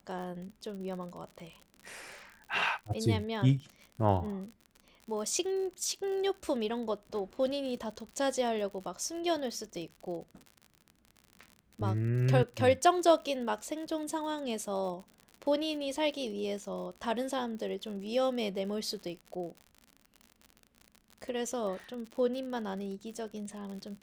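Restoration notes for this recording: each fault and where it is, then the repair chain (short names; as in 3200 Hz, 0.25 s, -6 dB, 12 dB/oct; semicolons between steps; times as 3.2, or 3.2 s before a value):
crackle 59/s -40 dBFS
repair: de-click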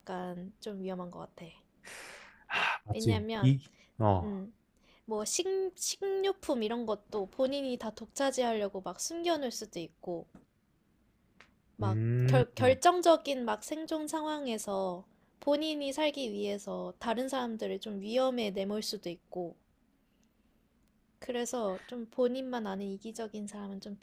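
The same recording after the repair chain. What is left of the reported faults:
none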